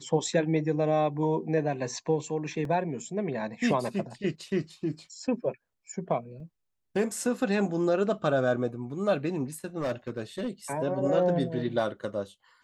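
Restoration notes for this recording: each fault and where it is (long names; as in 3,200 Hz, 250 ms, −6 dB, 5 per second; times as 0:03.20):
0:02.65: drop-out 2.1 ms
0:06.40: drop-out 3.7 ms
0:09.78–0:10.49: clipping −26 dBFS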